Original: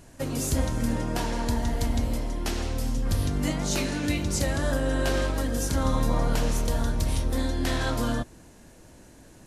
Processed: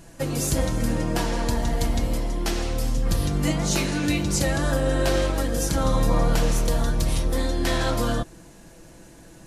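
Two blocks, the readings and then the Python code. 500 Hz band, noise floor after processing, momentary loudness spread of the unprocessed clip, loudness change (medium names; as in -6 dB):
+4.5 dB, -47 dBFS, 4 LU, +3.0 dB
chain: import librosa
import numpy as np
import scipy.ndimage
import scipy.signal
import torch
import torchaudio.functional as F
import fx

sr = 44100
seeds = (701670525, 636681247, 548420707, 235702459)

y = x + 0.46 * np.pad(x, (int(6.0 * sr / 1000.0), 0))[:len(x)]
y = y * 10.0 ** (3.0 / 20.0)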